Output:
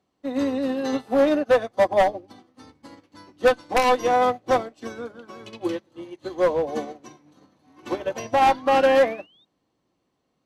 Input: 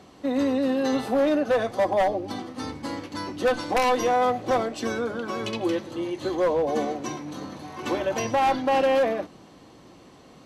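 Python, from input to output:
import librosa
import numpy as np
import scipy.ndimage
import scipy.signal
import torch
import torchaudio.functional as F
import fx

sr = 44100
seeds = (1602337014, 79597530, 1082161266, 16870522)

y = fx.spec_paint(x, sr, seeds[0], shape='rise', start_s=7.66, length_s=1.79, low_hz=250.0, high_hz=3800.0, level_db=-37.0)
y = fx.upward_expand(y, sr, threshold_db=-38.0, expansion=2.5)
y = y * 10.0 ** (6.0 / 20.0)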